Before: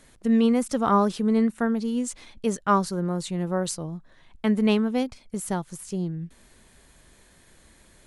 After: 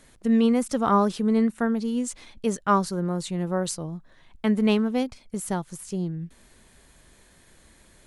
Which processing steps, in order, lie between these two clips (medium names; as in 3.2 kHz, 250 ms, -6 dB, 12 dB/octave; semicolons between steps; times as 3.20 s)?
4.59–4.99 s: hysteresis with a dead band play -48 dBFS